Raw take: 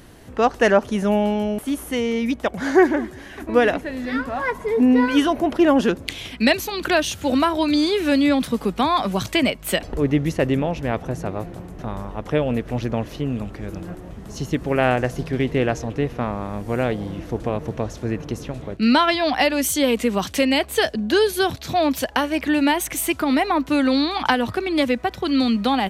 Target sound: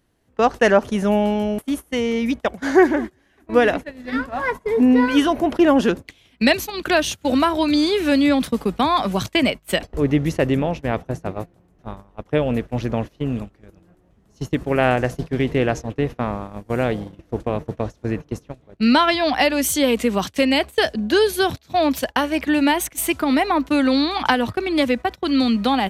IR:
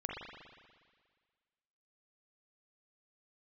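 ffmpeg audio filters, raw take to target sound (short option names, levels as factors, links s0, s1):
-af "agate=range=0.0794:threshold=0.0501:ratio=16:detection=peak,volume=1.12"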